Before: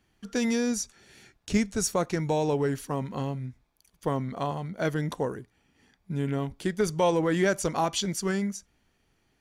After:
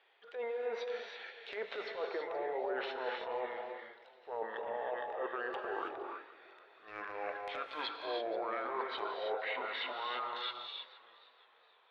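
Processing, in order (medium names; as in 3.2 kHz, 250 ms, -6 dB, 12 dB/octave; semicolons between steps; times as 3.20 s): gliding tape speed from 104% -> 54%; de-esser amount 55%; Chebyshev band-pass 450–3800 Hz, order 4; low-pass that closes with the level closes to 1.1 kHz, closed at -30.5 dBFS; transient shaper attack -11 dB, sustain +7 dB; reverse; compression, threshold -42 dBFS, peak gain reduction 15.5 dB; reverse; gated-style reverb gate 350 ms rising, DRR 2 dB; modulated delay 475 ms, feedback 40%, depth 92 cents, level -20 dB; trim +5.5 dB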